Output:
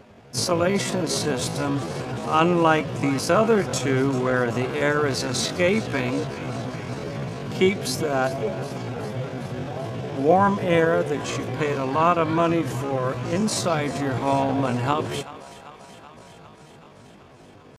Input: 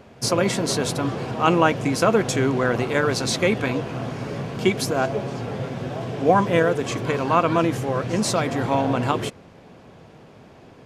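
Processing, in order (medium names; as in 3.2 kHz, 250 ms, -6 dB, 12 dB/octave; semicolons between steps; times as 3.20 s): thinning echo 235 ms, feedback 75%, high-pass 430 Hz, level -16.5 dB; tempo 0.61×; trim -1 dB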